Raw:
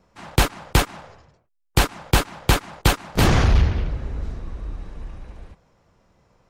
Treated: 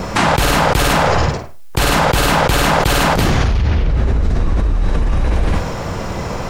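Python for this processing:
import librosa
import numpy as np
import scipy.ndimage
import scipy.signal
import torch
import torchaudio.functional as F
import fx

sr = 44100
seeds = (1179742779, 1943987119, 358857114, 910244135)

y = fx.room_flutter(x, sr, wall_m=9.0, rt60_s=0.31)
y = fx.env_flatten(y, sr, amount_pct=100)
y = y * 10.0 ** (-2.5 / 20.0)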